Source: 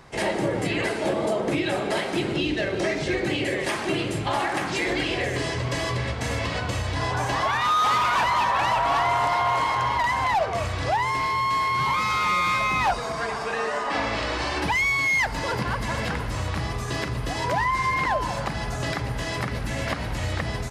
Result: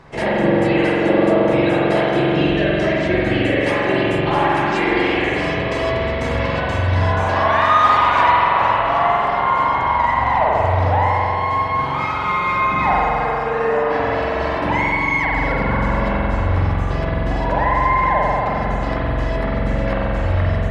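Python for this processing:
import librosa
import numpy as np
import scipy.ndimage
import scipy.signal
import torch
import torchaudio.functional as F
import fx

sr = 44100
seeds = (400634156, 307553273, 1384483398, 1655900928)

y = fx.lowpass(x, sr, hz=fx.steps((0.0, 2300.0), (8.32, 1100.0)), slope=6)
y = fx.dereverb_blind(y, sr, rt60_s=0.86)
y = fx.rev_spring(y, sr, rt60_s=3.2, pass_ms=(44,), chirp_ms=50, drr_db=-6.0)
y = F.gain(torch.from_numpy(y), 4.0).numpy()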